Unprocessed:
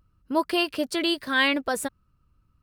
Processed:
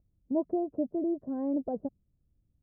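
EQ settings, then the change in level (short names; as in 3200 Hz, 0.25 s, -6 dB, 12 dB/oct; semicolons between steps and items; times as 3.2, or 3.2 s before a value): Chebyshev low-pass 710 Hz, order 4; dynamic EQ 190 Hz, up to +7 dB, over -42 dBFS, Q 0.95; -6.0 dB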